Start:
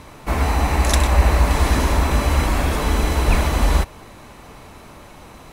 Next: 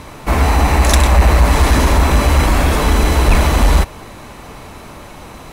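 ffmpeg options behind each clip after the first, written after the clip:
-af "acontrast=85"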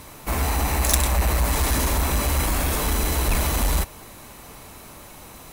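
-af "aeval=exprs='0.891*(cos(1*acos(clip(val(0)/0.891,-1,1)))-cos(1*PI/2))+0.0282*(cos(5*acos(clip(val(0)/0.891,-1,1)))-cos(5*PI/2))':c=same,aemphasis=mode=production:type=50fm,volume=-11dB"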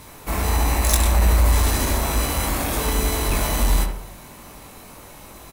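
-filter_complex "[0:a]asplit=2[a][b];[b]adelay=21,volume=-5dB[c];[a][c]amix=inputs=2:normalize=0,asplit=2[d][e];[e]adelay=71,lowpass=f=1.6k:p=1,volume=-4dB,asplit=2[f][g];[g]adelay=71,lowpass=f=1.6k:p=1,volume=0.49,asplit=2[h][i];[i]adelay=71,lowpass=f=1.6k:p=1,volume=0.49,asplit=2[j][k];[k]adelay=71,lowpass=f=1.6k:p=1,volume=0.49,asplit=2[l][m];[m]adelay=71,lowpass=f=1.6k:p=1,volume=0.49,asplit=2[n][o];[o]adelay=71,lowpass=f=1.6k:p=1,volume=0.49[p];[f][h][j][l][n][p]amix=inputs=6:normalize=0[q];[d][q]amix=inputs=2:normalize=0,volume=-1.5dB"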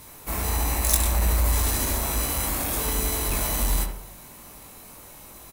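-af "crystalizer=i=1:c=0,volume=-6dB"

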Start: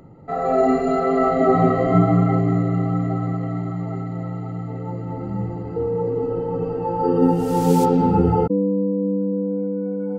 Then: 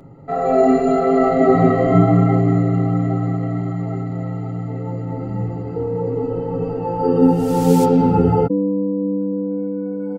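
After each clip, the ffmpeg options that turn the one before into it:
-af "aecho=1:1:7.3:0.39,volume=2dB"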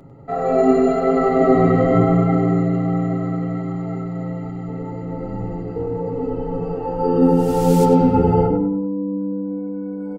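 -filter_complex "[0:a]asubboost=boost=3.5:cutoff=56,asplit=2[a][b];[b]adelay=98,lowpass=f=2.6k:p=1,volume=-4dB,asplit=2[c][d];[d]adelay=98,lowpass=f=2.6k:p=1,volume=0.41,asplit=2[e][f];[f]adelay=98,lowpass=f=2.6k:p=1,volume=0.41,asplit=2[g][h];[h]adelay=98,lowpass=f=2.6k:p=1,volume=0.41,asplit=2[i][j];[j]adelay=98,lowpass=f=2.6k:p=1,volume=0.41[k];[c][e][g][i][k]amix=inputs=5:normalize=0[l];[a][l]amix=inputs=2:normalize=0,volume=-1.5dB"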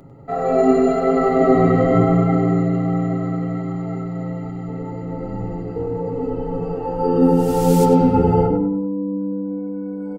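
-af "highshelf=f=6.4k:g=4"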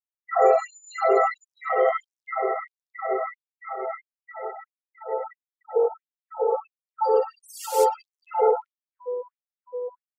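-af "afftfilt=real='re*gte(hypot(re,im),0.0178)':imag='im*gte(hypot(re,im),0.0178)':win_size=1024:overlap=0.75,alimiter=level_in=13dB:limit=-1dB:release=50:level=0:latency=1,afftfilt=real='re*gte(b*sr/1024,360*pow(5700/360,0.5+0.5*sin(2*PI*1.5*pts/sr)))':imag='im*gte(b*sr/1024,360*pow(5700/360,0.5+0.5*sin(2*PI*1.5*pts/sr)))':win_size=1024:overlap=0.75,volume=-6.5dB"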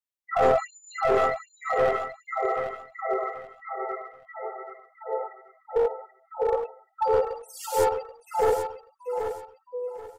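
-filter_complex "[0:a]aeval=exprs='clip(val(0),-1,0.133)':c=same,asplit=2[a][b];[b]aecho=0:1:781|1562|2343:0.376|0.101|0.0274[c];[a][c]amix=inputs=2:normalize=0,volume=-1.5dB"

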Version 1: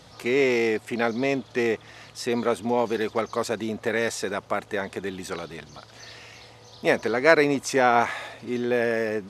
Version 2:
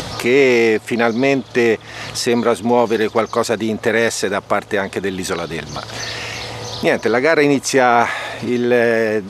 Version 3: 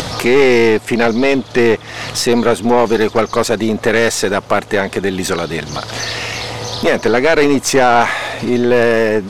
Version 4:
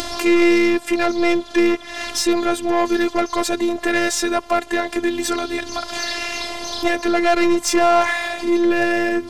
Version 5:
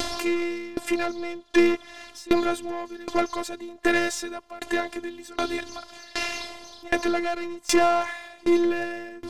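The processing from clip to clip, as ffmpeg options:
-af "acompressor=mode=upward:threshold=-25dB:ratio=2.5,alimiter=level_in=10.5dB:limit=-1dB:release=50:level=0:latency=1,volume=-1dB"
-af "aeval=exprs='(tanh(3.16*val(0)+0.45)-tanh(0.45))/3.16':c=same,volume=6dB"
-af "acontrast=38,afftfilt=real='hypot(re,im)*cos(PI*b)':imag='0':win_size=512:overlap=0.75,volume=-5dB"
-af "aeval=exprs='val(0)*pow(10,-24*if(lt(mod(1.3*n/s,1),2*abs(1.3)/1000),1-mod(1.3*n/s,1)/(2*abs(1.3)/1000),(mod(1.3*n/s,1)-2*abs(1.3)/1000)/(1-2*abs(1.3)/1000))/20)':c=same"

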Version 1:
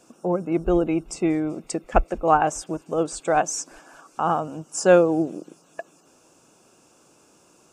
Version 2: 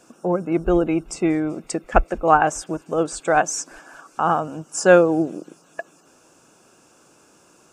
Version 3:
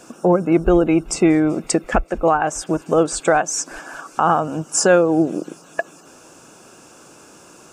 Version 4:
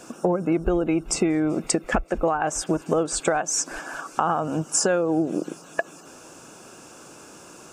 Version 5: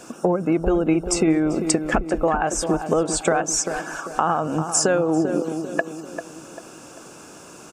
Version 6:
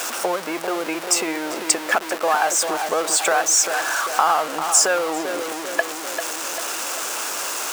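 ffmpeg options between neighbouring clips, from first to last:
-af "equalizer=f=1.6k:w=2.2:g=5,volume=2dB"
-filter_complex "[0:a]asplit=2[a][b];[b]acompressor=threshold=-25dB:ratio=6,volume=-3dB[c];[a][c]amix=inputs=2:normalize=0,alimiter=limit=-10dB:level=0:latency=1:release=405,volume=4.5dB"
-af "acompressor=threshold=-18dB:ratio=12"
-filter_complex "[0:a]asplit=2[a][b];[b]adelay=394,lowpass=f=1.3k:p=1,volume=-7.5dB,asplit=2[c][d];[d]adelay=394,lowpass=f=1.3k:p=1,volume=0.44,asplit=2[e][f];[f]adelay=394,lowpass=f=1.3k:p=1,volume=0.44,asplit=2[g][h];[h]adelay=394,lowpass=f=1.3k:p=1,volume=0.44,asplit=2[i][j];[j]adelay=394,lowpass=f=1.3k:p=1,volume=0.44[k];[a][c][e][g][i][k]amix=inputs=6:normalize=0,volume=2dB"
-af "aeval=exprs='val(0)+0.5*0.0668*sgn(val(0))':c=same,highpass=750,volume=3.5dB"

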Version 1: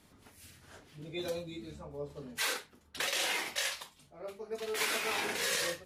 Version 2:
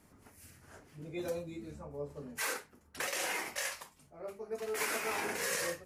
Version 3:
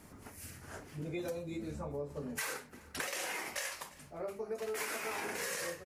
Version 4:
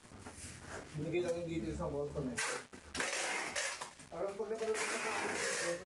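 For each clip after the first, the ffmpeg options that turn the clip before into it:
-af "equalizer=f=3.6k:w=1.8:g=-11.5"
-filter_complex "[0:a]acompressor=threshold=-44dB:ratio=6,asplit=2[a][b];[b]adelay=349.9,volume=-19dB,highshelf=f=4k:g=-7.87[c];[a][c]amix=inputs=2:normalize=0,volume=7.5dB"
-af "flanger=delay=8:depth=9.5:regen=50:speed=0.79:shape=sinusoidal,aeval=exprs='val(0)*gte(abs(val(0)),0.00133)':c=same,aresample=22050,aresample=44100,volume=5.5dB"

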